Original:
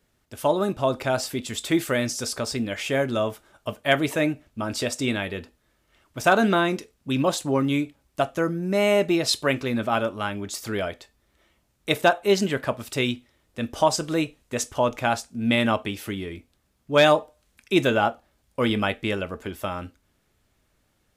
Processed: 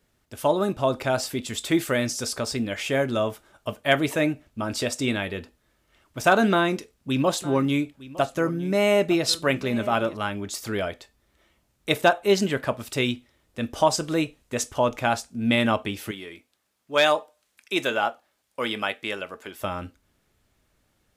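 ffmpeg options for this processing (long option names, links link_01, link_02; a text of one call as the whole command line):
ffmpeg -i in.wav -filter_complex "[0:a]asettb=1/sr,asplit=3[link_01][link_02][link_03];[link_01]atrim=end=6.514[link_04];[link_02]atrim=start=6.51:end=10.17,asetpts=PTS-STARTPTS,afade=type=in:duration=0.004:curve=qsin,afade=type=out:start_time=3.656:duration=0.004:curve=qsin,aecho=1:1:909:0.126,atrim=end_sample=161406[link_05];[link_03]atrim=start=10.166[link_06];[link_04][link_05]acrossfade=duration=0.004:curve1=hsin:curve2=qsin[link_07];[link_07][link_06]acrossfade=duration=0.004:curve1=qsin:curve2=hsin,asettb=1/sr,asplit=3[link_08][link_09][link_10];[link_08]atrim=end=16.114[link_11];[link_09]atrim=start=16.11:end=19.6,asetpts=PTS-STARTPTS,afade=type=in:duration=0.004:curve=qsin,afade=type=out:start_time=3.486:duration=0.004:curve=qsin,highpass=frequency=710:poles=1[link_12];[link_10]atrim=start=19.596[link_13];[link_11][link_12]acrossfade=duration=0.004:curve1=hsin:curve2=qsin[link_14];[link_14][link_13]acrossfade=duration=0.004:curve1=qsin:curve2=hsin" out.wav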